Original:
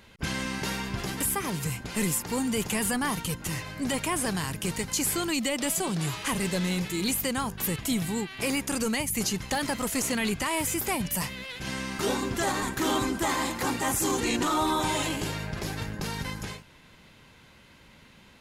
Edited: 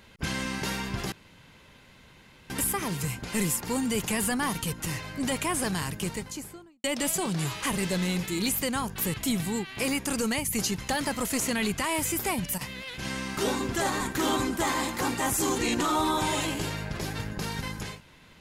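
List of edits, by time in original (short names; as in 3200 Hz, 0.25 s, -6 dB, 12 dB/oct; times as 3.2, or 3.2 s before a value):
1.12 insert room tone 1.38 s
4.49–5.46 studio fade out
10.85–11.58 dip -13.5 dB, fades 0.35 s logarithmic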